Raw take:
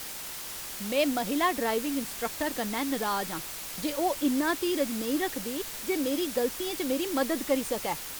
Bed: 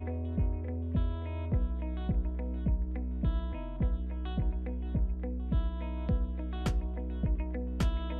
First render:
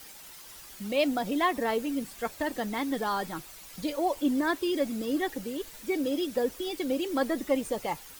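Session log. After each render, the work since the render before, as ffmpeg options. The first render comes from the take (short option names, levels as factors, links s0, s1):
-af "afftdn=nr=11:nf=-39"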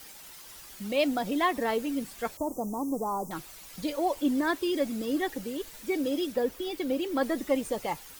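-filter_complex "[0:a]asettb=1/sr,asplit=3[s0][s1][s2];[s0]atrim=end=2.374[s3];[s1]atrim=start=2.37:end=3.31,asetpts=PTS-STARTPTS,afade=t=in:d=0.004:c=qsin,afade=t=out:st=0.936:d=0.004:c=qsin,asuperstop=centerf=2600:order=12:qfactor=0.55[s4];[s2]atrim=start=3.306[s5];[s3][s4]acrossfade=d=0.004:c1=hsin:c2=qsin[s6];[s6][s5]acrossfade=d=0.004:c1=qsin:c2=hsin,asettb=1/sr,asplit=3[s7][s8][s9];[s7]atrim=end=6.324[s10];[s8]atrim=start=6.32:end=7.23,asetpts=PTS-STARTPTS,afade=t=in:d=0.004:c=qsin,afade=t=out:st=0.906:d=0.004:c=qsin,equalizer=f=7800:t=o:w=1.7:g=-4.5[s11];[s9]atrim=start=7.226[s12];[s10][s11]acrossfade=d=0.004:c1=hsin:c2=qsin[s13];[s13][s12]acrossfade=d=0.004:c1=qsin:c2=hsin"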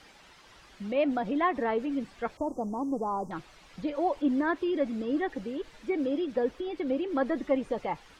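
-filter_complex "[0:a]lowpass=4100,acrossover=split=2500[s0][s1];[s1]acompressor=threshold=0.00141:ratio=4:attack=1:release=60[s2];[s0][s2]amix=inputs=2:normalize=0"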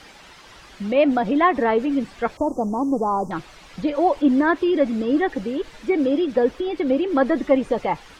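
-af "volume=2.99"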